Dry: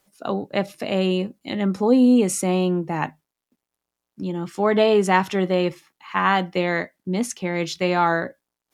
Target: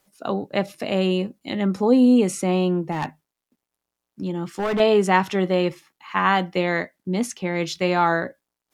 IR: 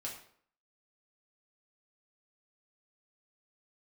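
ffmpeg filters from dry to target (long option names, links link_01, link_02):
-filter_complex "[0:a]acrossover=split=5300[link_01][link_02];[link_02]alimiter=level_in=1dB:limit=-24dB:level=0:latency=1:release=411,volume=-1dB[link_03];[link_01][link_03]amix=inputs=2:normalize=0,asettb=1/sr,asplit=3[link_04][link_05][link_06];[link_04]atrim=end=2.924[link_07];[link_05]atrim=start=2.92:end=4.8,asetpts=PTS-STARTPTS,afade=type=in:duration=0.004:curve=qsin,afade=type=out:start_time=1.876:duration=0.004:curve=qsin,volume=20dB,asoftclip=hard,volume=-20dB[link_08];[link_06]atrim=start=4.796[link_09];[link_07][link_08]acrossfade=duration=0.004:curve1=hsin:curve2=qsin[link_10];[link_10][link_09]acrossfade=duration=0.004:curve1=qsin:curve2=hsin"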